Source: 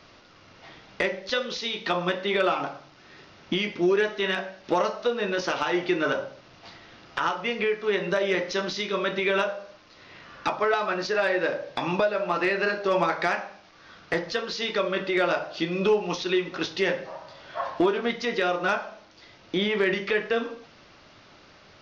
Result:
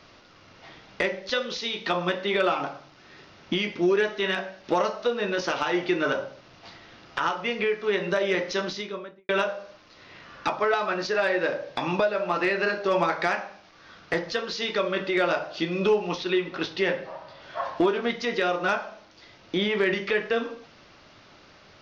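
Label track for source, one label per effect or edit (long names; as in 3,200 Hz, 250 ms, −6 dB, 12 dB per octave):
8.590000	9.290000	fade out and dull
16.090000	17.420000	low-pass filter 4,700 Hz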